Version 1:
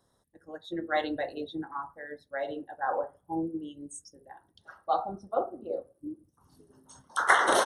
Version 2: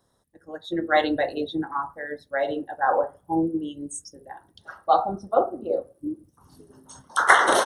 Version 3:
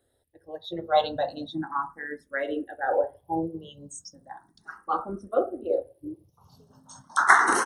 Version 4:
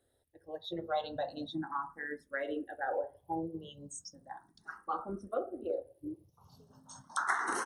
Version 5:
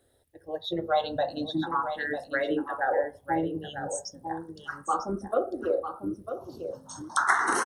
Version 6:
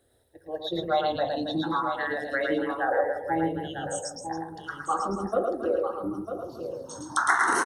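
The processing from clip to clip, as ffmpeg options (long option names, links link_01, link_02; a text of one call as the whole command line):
ffmpeg -i in.wav -af "dynaudnorm=framelen=230:gausssize=5:maxgain=6dB,volume=2.5dB" out.wav
ffmpeg -i in.wav -filter_complex "[0:a]asplit=2[link_01][link_02];[link_02]afreqshift=0.36[link_03];[link_01][link_03]amix=inputs=2:normalize=1" out.wav
ffmpeg -i in.wav -af "acompressor=threshold=-30dB:ratio=2.5,volume=-4dB" out.wav
ffmpeg -i in.wav -af "aecho=1:1:948:0.355,volume=8.5dB" out.wav
ffmpeg -i in.wav -af "aecho=1:1:110.8|274.1:0.631|0.282" out.wav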